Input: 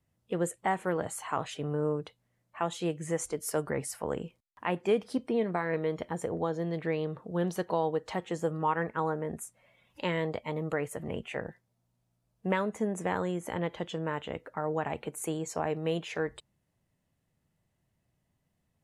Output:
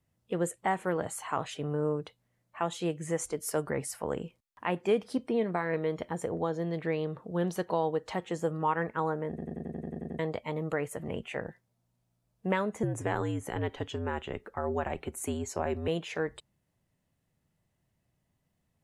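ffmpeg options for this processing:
-filter_complex "[0:a]asettb=1/sr,asplit=3[s0][s1][s2];[s0]atrim=end=12.834[s3];[s1]atrim=start=12.83:end=15.88,asetpts=PTS-STARTPTS,afade=t=in:d=0.004:c=qsin,afade=t=out:st=3.046:d=0.004:c=qsin,afreqshift=-68[s4];[s2]atrim=start=15.876[s5];[s3][s4]acrossfade=d=0.004:c1=hsin:c2=qsin[s6];[s6][s5]acrossfade=d=0.004:c1=qsin:c2=hsin,asplit=11[s7][s8][s9][s10][s11][s12][s13][s14][s15][s16][s17];[s7]atrim=end=9.382[s18];[s8]atrim=start=9.288:end=9.382[s19];[s9]atrim=start=9.288:end=9.382[s20];[s10]atrim=start=9.288:end=9.382[s21];[s11]atrim=start=9.288:end=9.382[s22];[s12]atrim=start=9.288:end=9.382[s23];[s13]atrim=start=9.288:end=9.382[s24];[s14]atrim=start=9.288:end=9.382[s25];[s15]atrim=start=9.288:end=9.382[s26];[s16]atrim=start=9.288:end=9.382[s27];[s17]atrim=start=10.188[s28];[s18][s19]acrossfade=d=0.004:c1=hsin:c2=hsin[s29];[s29][s20]acrossfade=d=0.004:c1=hsin:c2=hsin[s30];[s30][s21]acrossfade=d=0.004:c1=hsin:c2=hsin[s31];[s31][s22]acrossfade=d=0.004:c1=hsin:c2=hsin[s32];[s32][s23]acrossfade=d=0.004:c1=hsin:c2=hsin[s33];[s33][s24]acrossfade=d=0.004:c1=hsin:c2=hsin[s34];[s34][s25]acrossfade=d=0.004:c1=hsin:c2=hsin[s35];[s35][s26]acrossfade=d=0.004:c1=hsin:c2=hsin[s36];[s36][s27]acrossfade=d=0.004:c1=hsin:c2=hsin[s37];[s37][s28]acrossfade=d=0.004:c1=hsin:c2=hsin"

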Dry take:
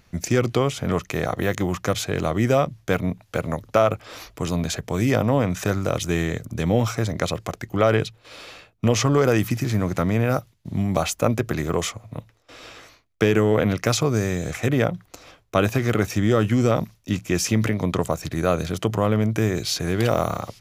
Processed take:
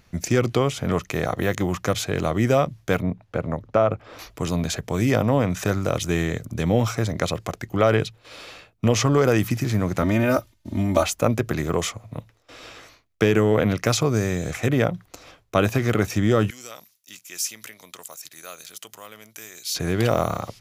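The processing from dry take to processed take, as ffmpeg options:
-filter_complex "[0:a]asettb=1/sr,asplit=3[s0][s1][s2];[s0]atrim=end=3.024[s3];[s1]atrim=start=3.02:end=4.19,asetpts=PTS-STARTPTS,afade=t=in:d=0.004:c=qsin,afade=t=out:st=1.166:d=0.004:c=qsin,lowpass=f=1300:p=1[s4];[s2]atrim=start=4.186[s5];[s3][s4]acrossfade=d=0.004:c1=hsin:c2=qsin[s6];[s6][s5]acrossfade=d=0.004:c1=qsin:c2=hsin,asettb=1/sr,asplit=3[s7][s8][s9];[s7]atrim=end=10.024[s10];[s8]atrim=start=10.02:end=11.04,asetpts=PTS-STARTPTS,afade=t=in:d=0.004:c=qsin,afade=t=out:st=1.016:d=0.004:c=qsin,aecho=1:1:3.3:0.96,atrim=end_sample=44982[s11];[s9]atrim=start=11.036[s12];[s10][s11]acrossfade=d=0.004:c1=hsin:c2=qsin[s13];[s13][s12]acrossfade=d=0.004:c1=qsin:c2=hsin,asettb=1/sr,asplit=3[s14][s15][s16];[s14]atrim=end=16.504[s17];[s15]atrim=start=16.5:end=19.75,asetpts=PTS-STARTPTS,afade=t=in:d=0.004:c=qsin,afade=t=out:st=3.246:d=0.004:c=qsin,aderivative[s18];[s16]atrim=start=19.746[s19];[s17][s18]acrossfade=d=0.004:c1=hsin:c2=qsin[s20];[s20][s19]acrossfade=d=0.004:c1=qsin:c2=hsin"

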